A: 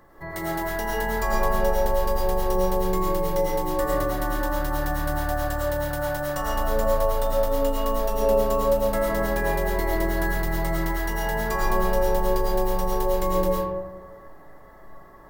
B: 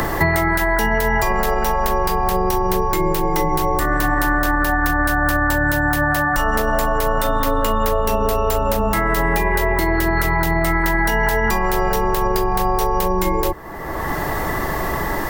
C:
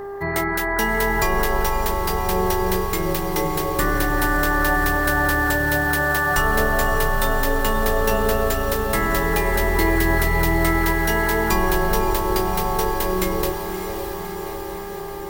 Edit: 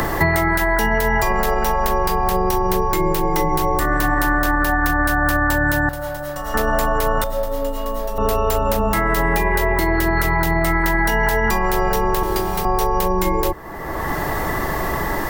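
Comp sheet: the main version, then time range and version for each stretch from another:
B
5.89–6.54 from A
7.24–8.18 from A
12.23–12.65 from C

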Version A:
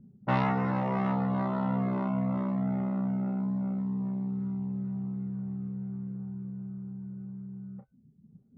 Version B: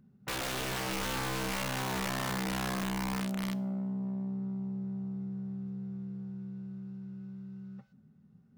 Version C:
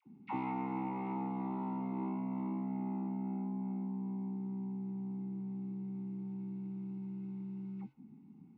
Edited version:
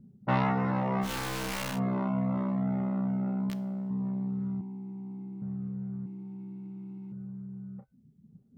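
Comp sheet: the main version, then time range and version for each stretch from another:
A
1.06–1.75 from B, crossfade 0.10 s
3.5–3.9 from B
4.61–5.42 from C
6.06–7.12 from C

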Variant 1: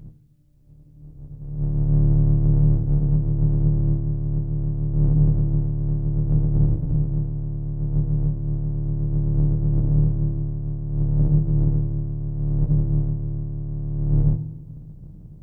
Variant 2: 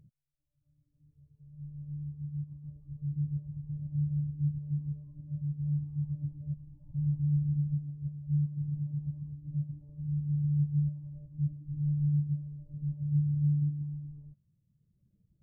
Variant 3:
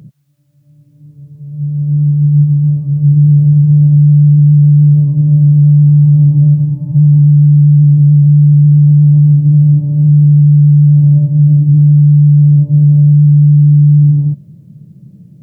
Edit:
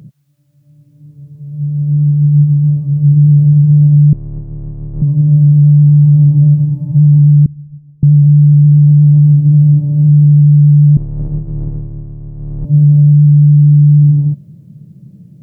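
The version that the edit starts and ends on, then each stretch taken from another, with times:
3
4.13–5.02 from 1
7.46–8.03 from 2
10.97–12.65 from 1

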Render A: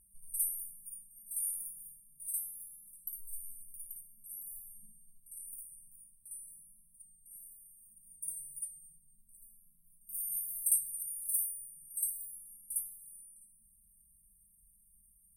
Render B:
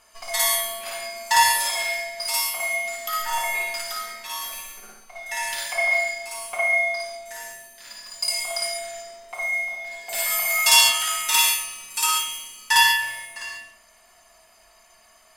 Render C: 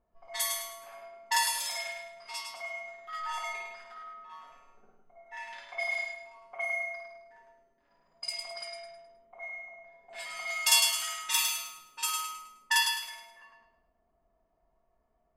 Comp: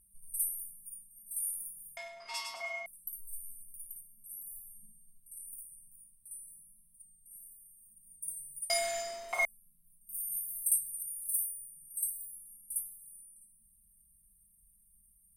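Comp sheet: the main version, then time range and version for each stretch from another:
A
1.97–2.86 from C
8.7–9.45 from B

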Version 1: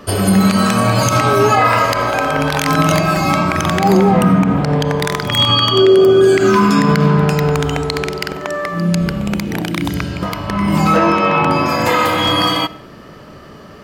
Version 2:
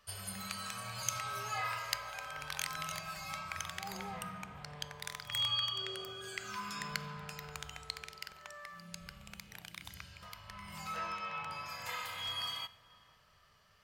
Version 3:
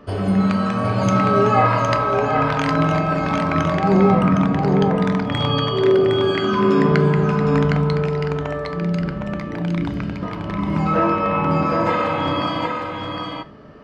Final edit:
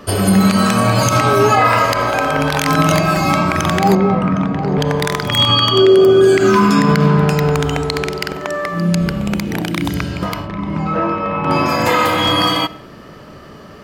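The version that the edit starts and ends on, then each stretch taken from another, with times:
1
3.95–4.78 from 3
10.44–11.48 from 3, crossfade 0.10 s
not used: 2

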